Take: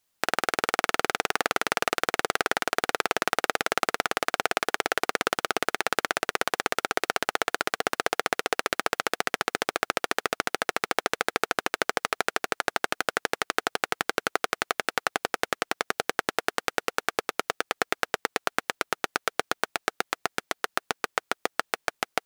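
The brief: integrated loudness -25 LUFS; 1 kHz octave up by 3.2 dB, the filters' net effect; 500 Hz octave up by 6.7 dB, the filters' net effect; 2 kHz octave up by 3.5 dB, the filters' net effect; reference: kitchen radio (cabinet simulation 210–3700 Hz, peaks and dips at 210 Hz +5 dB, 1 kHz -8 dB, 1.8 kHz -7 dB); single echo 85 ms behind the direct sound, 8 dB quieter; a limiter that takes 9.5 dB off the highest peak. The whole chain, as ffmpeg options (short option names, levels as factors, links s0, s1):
-af "equalizer=f=500:t=o:g=7.5,equalizer=f=1000:t=o:g=3,equalizer=f=2000:t=o:g=8,alimiter=limit=0.447:level=0:latency=1,highpass=210,equalizer=f=210:t=q:w=4:g=5,equalizer=f=1000:t=q:w=4:g=-8,equalizer=f=1800:t=q:w=4:g=-7,lowpass=f=3700:w=0.5412,lowpass=f=3700:w=1.3066,aecho=1:1:85:0.398,volume=2.11"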